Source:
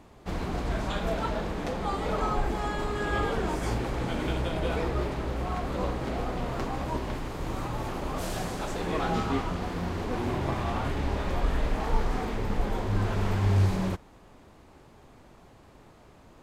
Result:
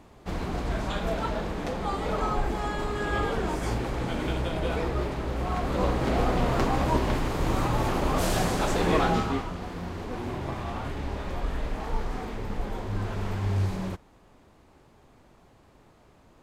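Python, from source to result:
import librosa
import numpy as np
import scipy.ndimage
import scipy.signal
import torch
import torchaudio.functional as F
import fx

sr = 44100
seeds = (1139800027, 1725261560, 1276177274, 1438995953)

y = fx.gain(x, sr, db=fx.line((5.23, 0.5), (6.23, 7.0), (8.94, 7.0), (9.51, -3.5)))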